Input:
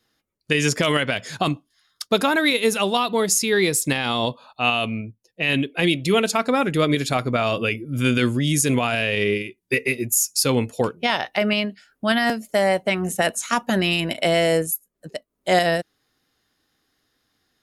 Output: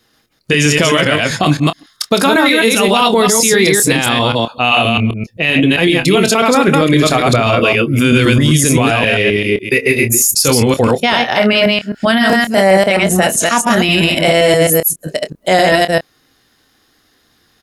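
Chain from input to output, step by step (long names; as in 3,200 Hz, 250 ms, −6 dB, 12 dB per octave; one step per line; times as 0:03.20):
delay that plays each chunk backwards 131 ms, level −1.5 dB
double-tracking delay 26 ms −12 dB
boost into a limiter +13 dB
level −1 dB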